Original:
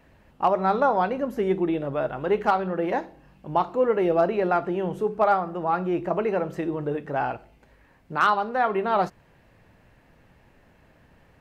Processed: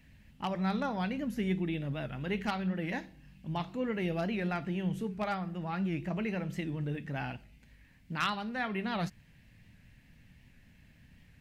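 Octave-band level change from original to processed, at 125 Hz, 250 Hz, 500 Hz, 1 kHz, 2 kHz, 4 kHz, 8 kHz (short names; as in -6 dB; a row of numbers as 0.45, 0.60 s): 0.0 dB, -4.5 dB, -15.0 dB, -15.0 dB, -6.5 dB, -0.5 dB, n/a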